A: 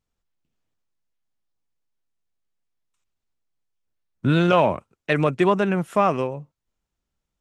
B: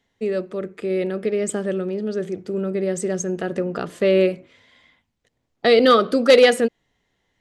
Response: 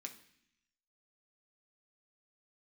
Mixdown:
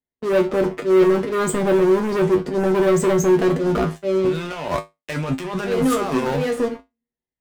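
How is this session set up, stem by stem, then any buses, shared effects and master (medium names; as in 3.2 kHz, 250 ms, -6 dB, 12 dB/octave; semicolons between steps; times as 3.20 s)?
+2.5 dB, 0.00 s, no send, compressor with a negative ratio -29 dBFS, ratio -1; power-law waveshaper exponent 1.4; tone controls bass -3 dB, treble +6 dB
-3.0 dB, 0.00 s, send -10 dB, tilt shelf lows +6.5 dB, about 1.4 kHz; compression 4:1, threshold -11 dBFS, peak gain reduction 7 dB; slow attack 146 ms; auto duck -19 dB, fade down 0.45 s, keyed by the first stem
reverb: on, RT60 0.65 s, pre-delay 3 ms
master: gate -43 dBFS, range -8 dB; waveshaping leveller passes 5; feedback comb 53 Hz, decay 0.19 s, harmonics odd, mix 90%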